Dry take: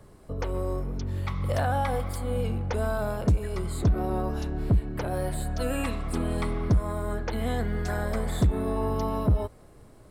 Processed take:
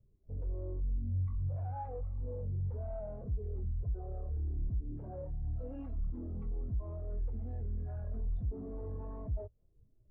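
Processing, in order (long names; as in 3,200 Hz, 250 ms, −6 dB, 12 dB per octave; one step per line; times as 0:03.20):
0:03.72–0:04.37: phaser with its sweep stopped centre 970 Hz, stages 6
in parallel at −0.5 dB: downward compressor, threshold −33 dBFS, peak gain reduction 13.5 dB
on the sum: gain into a clipping stage and back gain 33 dB
high-frequency loss of the air 120 metres
every bin expanded away from the loudest bin 2.5 to 1
level +5.5 dB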